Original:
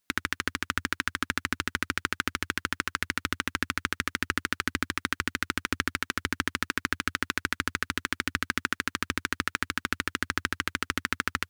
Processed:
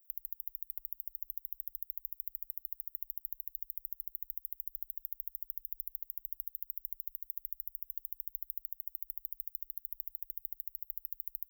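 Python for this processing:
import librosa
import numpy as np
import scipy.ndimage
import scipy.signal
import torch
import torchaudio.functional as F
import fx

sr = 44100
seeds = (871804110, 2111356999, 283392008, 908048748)

y = scipy.signal.sosfilt(scipy.signal.cheby2(4, 60, [100.0, 6500.0], 'bandstop', fs=sr, output='sos'), x)
y = librosa.effects.preemphasis(y, coef=0.8, zi=[0.0])
y = y * 10.0 ** (12.0 / 20.0)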